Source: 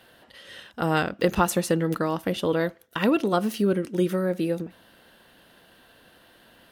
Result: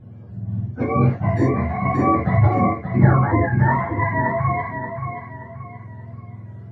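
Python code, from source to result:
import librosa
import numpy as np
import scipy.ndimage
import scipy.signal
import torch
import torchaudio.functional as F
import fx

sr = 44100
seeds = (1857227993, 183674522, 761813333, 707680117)

p1 = fx.octave_mirror(x, sr, pivot_hz=600.0)
p2 = fx.riaa(p1, sr, side='playback')
p3 = p2 + fx.echo_feedback(p2, sr, ms=578, feedback_pct=34, wet_db=-7.5, dry=0)
p4 = fx.rev_gated(p3, sr, seeds[0], gate_ms=90, shape='flat', drr_db=-2.0)
y = fx.detune_double(p4, sr, cents=fx.line((0.84, 25.0), (1.84, 36.0)), at=(0.84, 1.84), fade=0.02)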